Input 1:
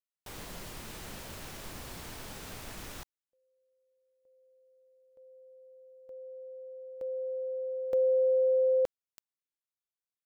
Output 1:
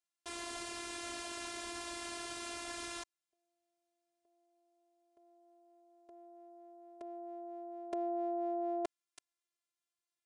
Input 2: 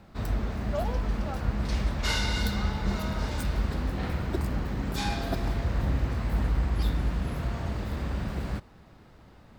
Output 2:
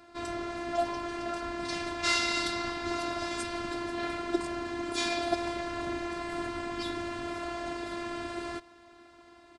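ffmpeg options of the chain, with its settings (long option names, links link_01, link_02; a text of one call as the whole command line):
ffmpeg -i in.wav -af "afftfilt=real='hypot(re,im)*cos(PI*b)':imag='0':win_size=512:overlap=0.75,aresample=22050,aresample=44100,highpass=frequency=240:poles=1,volume=6.5dB" out.wav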